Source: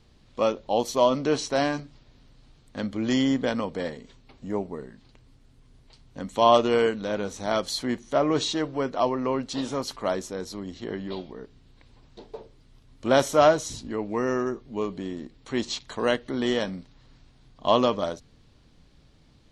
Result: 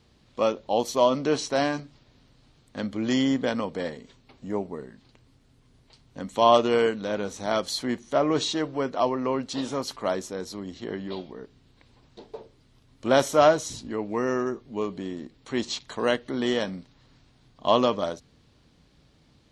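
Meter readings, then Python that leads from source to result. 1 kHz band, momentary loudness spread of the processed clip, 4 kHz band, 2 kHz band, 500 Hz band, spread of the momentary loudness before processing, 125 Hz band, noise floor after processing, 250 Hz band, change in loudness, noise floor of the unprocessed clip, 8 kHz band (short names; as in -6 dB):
0.0 dB, 17 LU, 0.0 dB, 0.0 dB, 0.0 dB, 17 LU, -1.0 dB, -61 dBFS, -0.5 dB, 0.0 dB, -57 dBFS, 0.0 dB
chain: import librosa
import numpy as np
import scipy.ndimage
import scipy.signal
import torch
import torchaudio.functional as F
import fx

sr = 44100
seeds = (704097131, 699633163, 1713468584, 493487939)

y = fx.highpass(x, sr, hz=77.0, slope=6)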